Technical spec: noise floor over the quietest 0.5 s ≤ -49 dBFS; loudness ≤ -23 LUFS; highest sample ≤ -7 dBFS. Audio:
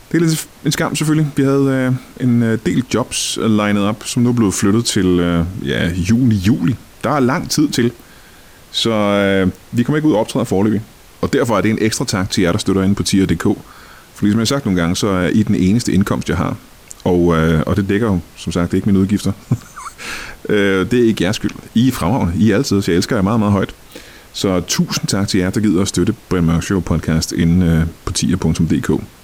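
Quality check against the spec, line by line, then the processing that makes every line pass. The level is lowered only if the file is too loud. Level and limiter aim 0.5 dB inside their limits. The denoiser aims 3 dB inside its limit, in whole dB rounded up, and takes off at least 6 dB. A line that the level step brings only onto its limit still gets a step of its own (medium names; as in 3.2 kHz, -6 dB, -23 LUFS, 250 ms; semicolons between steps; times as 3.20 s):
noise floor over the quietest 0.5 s -42 dBFS: fail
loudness -16.0 LUFS: fail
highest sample -4.5 dBFS: fail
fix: trim -7.5 dB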